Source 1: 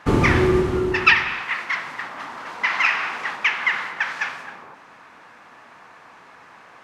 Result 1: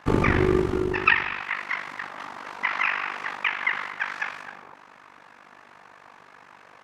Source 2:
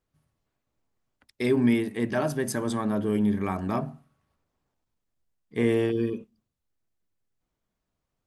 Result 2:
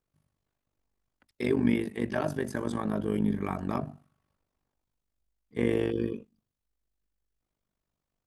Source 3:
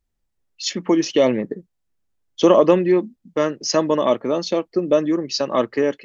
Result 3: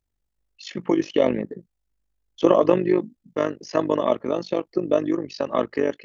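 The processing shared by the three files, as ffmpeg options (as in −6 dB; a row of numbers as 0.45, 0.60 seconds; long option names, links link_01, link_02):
-filter_complex "[0:a]tremolo=f=49:d=0.824,acrossover=split=3000[link_01][link_02];[link_02]acompressor=threshold=-43dB:ratio=4:attack=1:release=60[link_03];[link_01][link_03]amix=inputs=2:normalize=0"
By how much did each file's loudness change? −4.5, −3.5, −4.0 LU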